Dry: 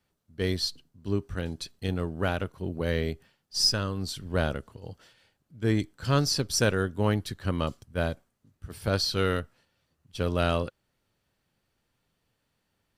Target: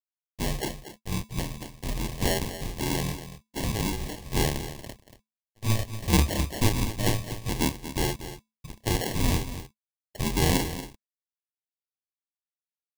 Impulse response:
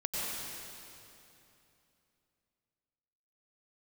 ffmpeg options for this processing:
-filter_complex "[0:a]aresample=11025,aeval=exprs='sgn(val(0))*max(abs(val(0))-0.0075,0)':channel_layout=same,aresample=44100,afreqshift=-220,asplit=2[link_01][link_02];[link_02]acompressor=threshold=-35dB:ratio=6,volume=-2dB[link_03];[link_01][link_03]amix=inputs=2:normalize=0,asplit=2[link_04][link_05];[link_05]adelay=28,volume=-4dB[link_06];[link_04][link_06]amix=inputs=2:normalize=0,acrusher=bits=6:mode=log:mix=0:aa=0.000001,equalizer=frequency=125:width_type=o:width=1:gain=-3,equalizer=frequency=250:width_type=o:width=1:gain=-4,equalizer=frequency=1000:width_type=o:width=1:gain=10,equalizer=frequency=4000:width_type=o:width=1:gain=-4,acrusher=samples=36:mix=1:aa=0.000001,asuperstop=centerf=1400:order=4:qfactor=3.2,highshelf=frequency=2400:gain=9,aecho=1:1:234:0.251,volume=-1.5dB"

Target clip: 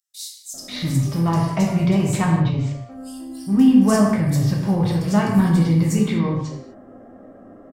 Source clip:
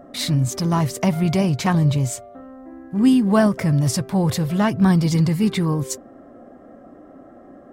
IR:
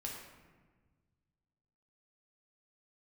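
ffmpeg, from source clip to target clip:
-filter_complex "[0:a]aeval=exprs='0.562*(cos(1*acos(clip(val(0)/0.562,-1,1)))-cos(1*PI/2))+0.0251*(cos(5*acos(clip(val(0)/0.562,-1,1)))-cos(5*PI/2))+0.00794*(cos(7*acos(clip(val(0)/0.562,-1,1)))-cos(7*PI/2))':channel_layout=same,acrossover=split=4600[link_01][link_02];[link_01]adelay=540[link_03];[link_03][link_02]amix=inputs=2:normalize=0[link_04];[1:a]atrim=start_sample=2205,afade=type=out:start_time=0.31:duration=0.01,atrim=end_sample=14112[link_05];[link_04][link_05]afir=irnorm=-1:irlink=0"

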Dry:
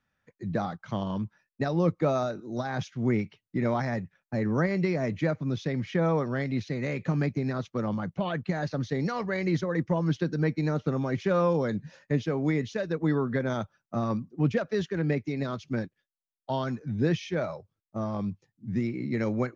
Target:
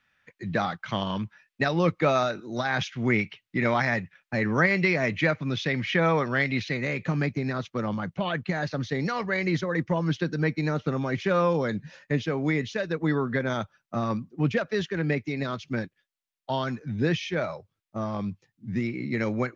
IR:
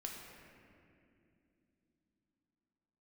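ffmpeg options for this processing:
-af "asetnsamples=nb_out_samples=441:pad=0,asendcmd='6.77 equalizer g 7',equalizer=frequency=2500:width_type=o:width=2.2:gain=14"

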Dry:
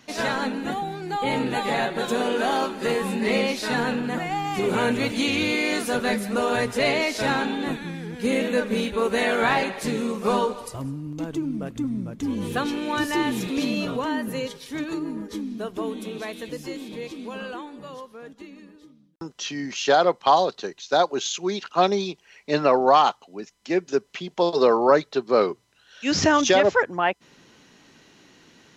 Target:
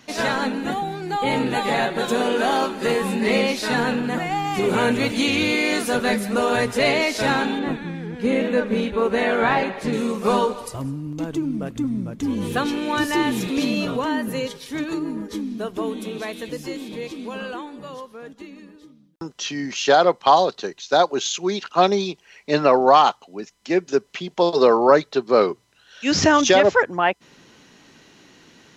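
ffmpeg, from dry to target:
ffmpeg -i in.wav -filter_complex "[0:a]asettb=1/sr,asplit=3[link_01][link_02][link_03];[link_01]atrim=end=7.594[link_04];[link_02]atrim=start=7.59:end=9.93,asetpts=PTS-STARTPTS,afade=type=in:duration=0.004:curve=qsin,afade=type=out:start_time=2.336:duration=0.004:curve=qsin,lowpass=frequency=2200:poles=1[link_05];[link_03]atrim=start=9.926[link_06];[link_04][link_05]acrossfade=duration=0.004:curve1=hsin:curve2=qsin[link_07];[link_07][link_06]acrossfade=duration=0.004:curve1=qsin:curve2=hsin,volume=3dB" out.wav

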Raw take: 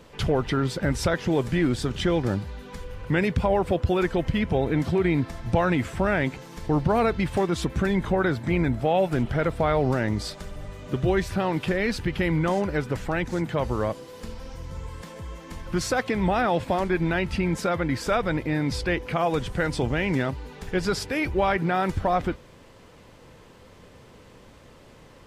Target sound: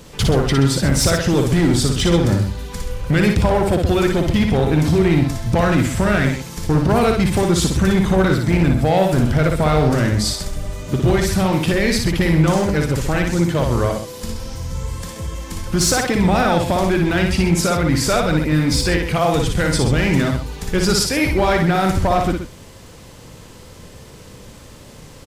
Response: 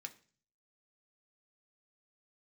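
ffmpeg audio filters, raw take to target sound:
-af "bass=frequency=250:gain=5,treble=frequency=4000:gain=11,asoftclip=type=hard:threshold=-16.5dB,aecho=1:1:58.31|128.3:0.631|0.316,volume=5dB"

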